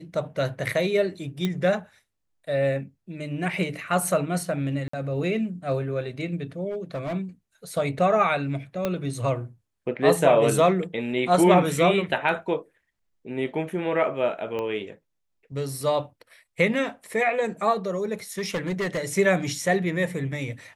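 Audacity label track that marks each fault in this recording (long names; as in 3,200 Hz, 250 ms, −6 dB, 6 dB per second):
1.450000	1.450000	click −13 dBFS
4.880000	4.930000	drop-out 54 ms
6.700000	7.140000	clipping −26 dBFS
8.850000	8.850000	click −12 dBFS
14.590000	14.590000	click −19 dBFS
18.380000	18.990000	clipping −23 dBFS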